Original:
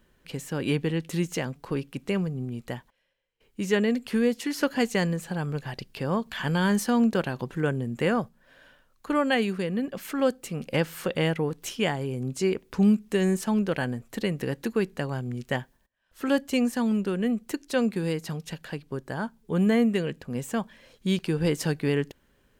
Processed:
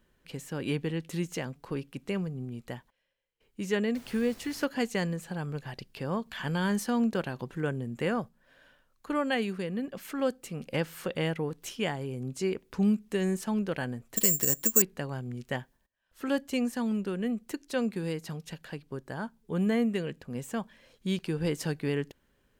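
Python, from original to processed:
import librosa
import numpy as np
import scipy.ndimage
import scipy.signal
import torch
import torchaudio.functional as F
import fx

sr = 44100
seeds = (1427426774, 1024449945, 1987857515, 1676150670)

y = fx.dmg_noise_colour(x, sr, seeds[0], colour='pink', level_db=-47.0, at=(3.94, 4.64), fade=0.02)
y = fx.resample_bad(y, sr, factor=6, down='none', up='zero_stuff', at=(14.16, 14.82))
y = F.gain(torch.from_numpy(y), -5.0).numpy()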